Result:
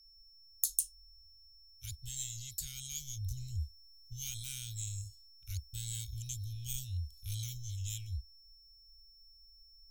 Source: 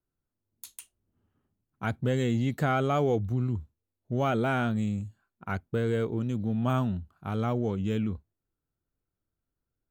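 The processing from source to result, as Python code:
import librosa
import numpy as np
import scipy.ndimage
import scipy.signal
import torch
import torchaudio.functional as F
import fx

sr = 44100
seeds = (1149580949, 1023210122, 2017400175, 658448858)

y = scipy.signal.sosfilt(scipy.signal.cheby2(4, 80, [220.0, 1100.0], 'bandstop', fs=sr, output='sos'), x)
y = fx.low_shelf(y, sr, hz=170.0, db=10.5)
y = fx.rider(y, sr, range_db=10, speed_s=0.5)
y = y + 10.0 ** (-73.0 / 20.0) * np.sin(2.0 * np.pi * 5400.0 * np.arange(len(y)) / sr)
y = F.gain(torch.from_numpy(y), 14.0).numpy()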